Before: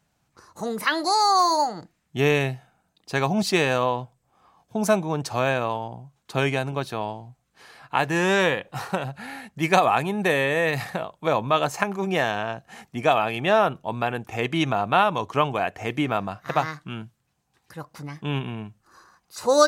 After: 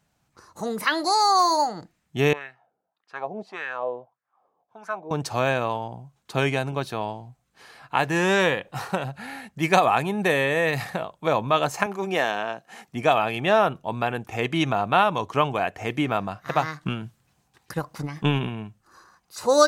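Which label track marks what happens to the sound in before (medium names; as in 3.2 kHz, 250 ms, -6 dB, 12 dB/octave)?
2.330000	5.110000	wah-wah 1.7 Hz 430–1600 Hz, Q 3.5
11.860000	12.880000	high-pass 240 Hz
16.810000	18.490000	transient shaper attack +11 dB, sustain +7 dB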